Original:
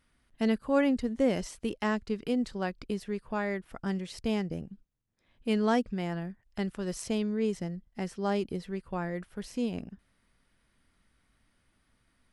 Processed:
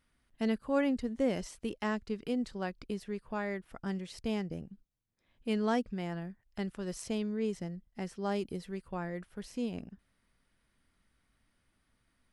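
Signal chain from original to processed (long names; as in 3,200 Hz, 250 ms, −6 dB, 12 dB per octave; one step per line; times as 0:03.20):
0:08.29–0:08.87: high-shelf EQ 9,900 Hz → 5,300 Hz +7.5 dB
level −4 dB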